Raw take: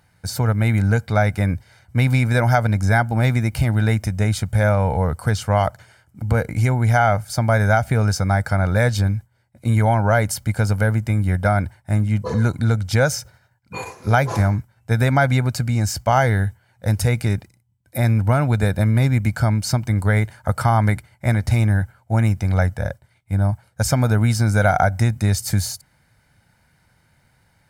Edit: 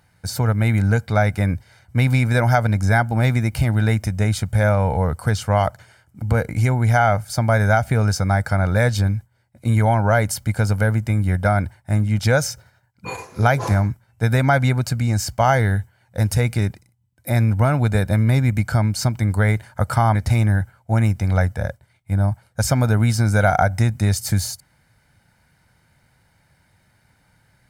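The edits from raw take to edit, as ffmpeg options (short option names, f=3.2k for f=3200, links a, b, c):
-filter_complex "[0:a]asplit=3[a][b][c];[a]atrim=end=12.192[d];[b]atrim=start=12.868:end=20.832[e];[c]atrim=start=21.358[f];[d][e]acrossfade=d=0.004:c1=hsin:c2=hsin[g];[g][f]acrossfade=d=0.004:c1=hsin:c2=hsin"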